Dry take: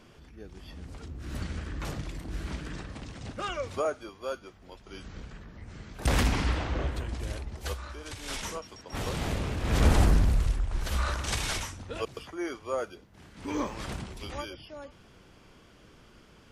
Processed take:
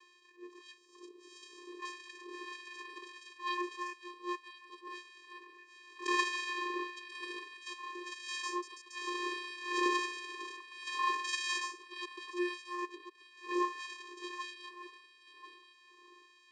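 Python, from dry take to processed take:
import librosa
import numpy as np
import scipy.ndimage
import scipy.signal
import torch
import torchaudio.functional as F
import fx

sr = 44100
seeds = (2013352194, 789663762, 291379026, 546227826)

y = fx.band_shelf(x, sr, hz=1800.0, db=-11.5, octaves=1.7, at=(0.77, 1.79))
y = fx.vocoder(y, sr, bands=8, carrier='square', carrier_hz=354.0)
y = y + 10.0 ** (-15.0 / 20.0) * np.pad(y, (int(1038 * sr / 1000.0), 0))[:len(y)]
y = fx.filter_lfo_highpass(y, sr, shape='sine', hz=1.6, low_hz=730.0, high_hz=2000.0, q=0.76)
y = fx.attack_slew(y, sr, db_per_s=220.0)
y = y * 10.0 ** (8.0 / 20.0)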